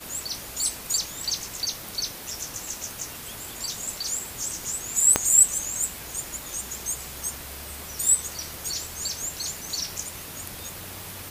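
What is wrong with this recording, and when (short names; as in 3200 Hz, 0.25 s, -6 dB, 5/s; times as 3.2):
5.16 pop -3 dBFS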